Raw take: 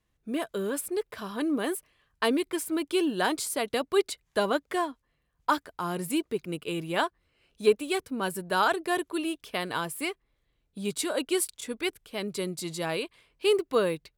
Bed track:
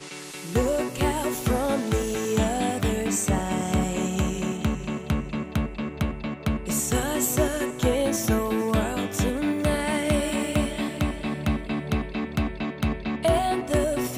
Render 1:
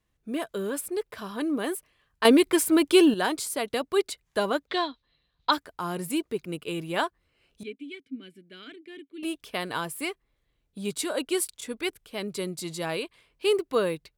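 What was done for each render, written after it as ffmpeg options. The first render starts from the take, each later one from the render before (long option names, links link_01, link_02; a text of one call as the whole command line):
ffmpeg -i in.wav -filter_complex "[0:a]asplit=3[link_01][link_02][link_03];[link_01]afade=type=out:start_time=4.67:duration=0.02[link_04];[link_02]lowpass=frequency=3900:width_type=q:width=9.4,afade=type=in:start_time=4.67:duration=0.02,afade=type=out:start_time=5.51:duration=0.02[link_05];[link_03]afade=type=in:start_time=5.51:duration=0.02[link_06];[link_04][link_05][link_06]amix=inputs=3:normalize=0,asettb=1/sr,asplit=3[link_07][link_08][link_09];[link_07]atrim=end=7.634[link_10];[link_08]atrim=start=7.63:end=9.23,asetpts=PTS-STARTPTS,afade=type=in:duration=0.004:curve=qsin,afade=type=out:start_time=1.596:duration=0.004:curve=qsin,asplit=3[link_11][link_12][link_13];[link_11]bandpass=frequency=270:width_type=q:width=8,volume=0dB[link_14];[link_12]bandpass=frequency=2290:width_type=q:width=8,volume=-6dB[link_15];[link_13]bandpass=frequency=3010:width_type=q:width=8,volume=-9dB[link_16];[link_14][link_15][link_16]amix=inputs=3:normalize=0[link_17];[link_09]atrim=start=9.226[link_18];[link_10][link_17]acrossfade=duration=0.004:curve1=hsin:curve2=qsin[link_19];[link_19][link_18]acrossfade=duration=0.004:curve1=qsin:curve2=hsin,asplit=3[link_20][link_21][link_22];[link_20]atrim=end=2.252[link_23];[link_21]atrim=start=2.248:end=3.142,asetpts=PTS-STARTPTS,volume=8.5dB[link_24];[link_22]atrim=start=3.138[link_25];[link_23][link_24]acrossfade=duration=0.004:curve1=hsin:curve2=hsin[link_26];[link_26][link_25]acrossfade=duration=0.004:curve1=hsin:curve2=hsin" out.wav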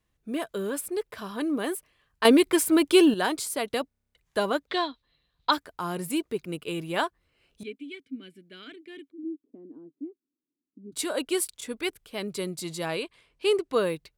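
ffmpeg -i in.wav -filter_complex "[0:a]asplit=3[link_01][link_02][link_03];[link_01]afade=type=out:start_time=9.1:duration=0.02[link_04];[link_02]asuperpass=centerf=280:order=4:qfactor=3,afade=type=in:start_time=9.1:duration=0.02,afade=type=out:start_time=10.92:duration=0.02[link_05];[link_03]afade=type=in:start_time=10.92:duration=0.02[link_06];[link_04][link_05][link_06]amix=inputs=3:normalize=0,asettb=1/sr,asplit=3[link_07][link_08][link_09];[link_07]atrim=end=12.884[link_10];[link_08]atrim=start=12.88:end=13.77,asetpts=PTS-STARTPTS,afade=type=in:duration=0.004:curve=qsin,afade=type=out:start_time=0.886:duration=0.004:curve=qsin,lowpass=11000[link_11];[link_09]atrim=start=13.766[link_12];[link_10][link_11]acrossfade=duration=0.004:curve1=hsin:curve2=qsin[link_13];[link_13][link_12]acrossfade=duration=0.004:curve1=qsin:curve2=hsin,asplit=10[link_14][link_15][link_16][link_17][link_18][link_19][link_20][link_21][link_22][link_23];[link_14]atrim=end=3.912[link_24];[link_15]atrim=start=3.878:end=3.912[link_25];[link_16]atrim=start=3.878:end=3.912[link_26];[link_17]atrim=start=3.878:end=3.912[link_27];[link_18]atrim=start=3.878:end=3.912[link_28];[link_19]atrim=start=3.878:end=3.912[link_29];[link_20]atrim=start=3.878:end=3.912[link_30];[link_21]atrim=start=3.878:end=3.912[link_31];[link_22]atrim=start=3.878:end=3.912[link_32];[link_23]atrim=start=4.148[link_33];[link_24][link_25]acrossfade=duration=0.004:curve1=hsin:curve2=hsin[link_34];[link_34][link_26]acrossfade=duration=0.004:curve1=hsin:curve2=hsin[link_35];[link_35][link_27]acrossfade=duration=0.004:curve1=hsin:curve2=hsin[link_36];[link_36][link_28]acrossfade=duration=0.004:curve1=hsin:curve2=hsin[link_37];[link_37][link_29]acrossfade=duration=0.004:curve1=hsin:curve2=hsin[link_38];[link_38][link_30]acrossfade=duration=0.004:curve1=hsin:curve2=hsin[link_39];[link_39][link_31]acrossfade=duration=0.004:curve1=hsin:curve2=hsin[link_40];[link_40][link_32]acrossfade=duration=0.004:curve1=hsin:curve2=hsin[link_41];[link_41][link_33]acrossfade=duration=0.004:curve1=hsin:curve2=hsin" out.wav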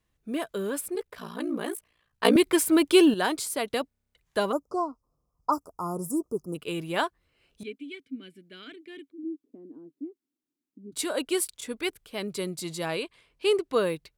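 ffmpeg -i in.wav -filter_complex "[0:a]asettb=1/sr,asplit=3[link_01][link_02][link_03];[link_01]atrim=end=0.954[link_04];[link_02]atrim=start=0.95:end=2.36,asetpts=PTS-STARTPTS,afade=type=in:duration=0.004:curve=qsin,afade=type=out:start_time=1.406:duration=0.004:curve=qsin,aeval=exprs='val(0)*sin(2*PI*29*n/s)':channel_layout=same[link_05];[link_03]atrim=start=2.356[link_06];[link_04][link_05]acrossfade=duration=0.004:curve1=hsin:curve2=qsin[link_07];[link_07][link_06]acrossfade=duration=0.004:curve1=qsin:curve2=hsin,asplit=3[link_08][link_09][link_10];[link_08]afade=type=out:start_time=4.51:duration=0.02[link_11];[link_09]asuperstop=centerf=2600:order=20:qfactor=0.69,afade=type=in:start_time=4.51:duration=0.02,afade=type=out:start_time=6.54:duration=0.02[link_12];[link_10]afade=type=in:start_time=6.54:duration=0.02[link_13];[link_11][link_12][link_13]amix=inputs=3:normalize=0" out.wav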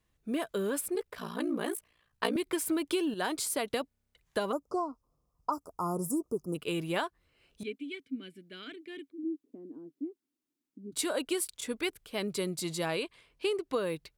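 ffmpeg -i in.wav -af "acompressor=threshold=-27dB:ratio=16" out.wav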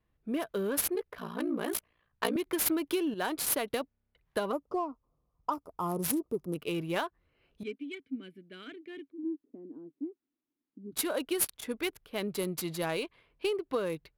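ffmpeg -i in.wav -af "aexciter=amount=7.5:drive=9.2:freq=11000,adynamicsmooth=sensitivity=7.5:basefreq=2800" out.wav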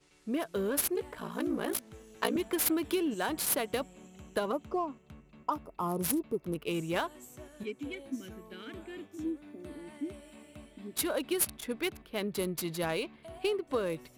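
ffmpeg -i in.wav -i bed.wav -filter_complex "[1:a]volume=-26.5dB[link_01];[0:a][link_01]amix=inputs=2:normalize=0" out.wav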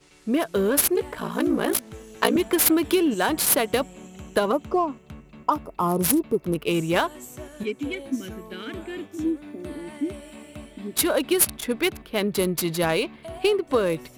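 ffmpeg -i in.wav -af "volume=10dB" out.wav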